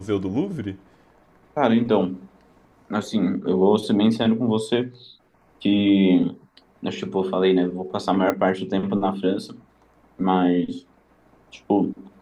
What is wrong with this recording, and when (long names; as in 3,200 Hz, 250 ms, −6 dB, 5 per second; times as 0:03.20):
0:08.30: click −9 dBFS